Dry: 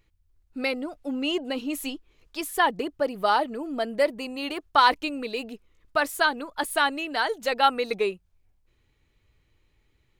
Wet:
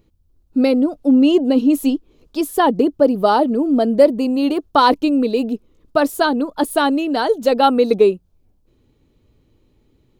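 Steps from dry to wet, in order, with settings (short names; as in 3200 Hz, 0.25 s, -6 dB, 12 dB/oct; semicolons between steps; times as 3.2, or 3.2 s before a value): graphic EQ 125/250/500/2000/8000 Hz +3/+11/+5/-10/-3 dB; gain +6 dB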